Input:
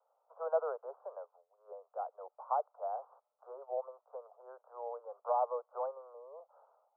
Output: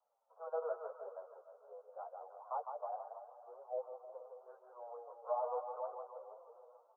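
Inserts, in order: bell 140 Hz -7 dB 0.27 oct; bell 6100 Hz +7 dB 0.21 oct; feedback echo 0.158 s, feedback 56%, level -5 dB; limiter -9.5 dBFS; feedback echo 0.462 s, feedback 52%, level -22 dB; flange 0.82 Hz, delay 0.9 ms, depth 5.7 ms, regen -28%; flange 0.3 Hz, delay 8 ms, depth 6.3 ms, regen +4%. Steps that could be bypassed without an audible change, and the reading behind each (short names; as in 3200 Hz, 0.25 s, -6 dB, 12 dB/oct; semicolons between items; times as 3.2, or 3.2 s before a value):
bell 140 Hz: input band starts at 360 Hz; bell 6100 Hz: input band ends at 1400 Hz; limiter -9.5 dBFS: input peak -19.5 dBFS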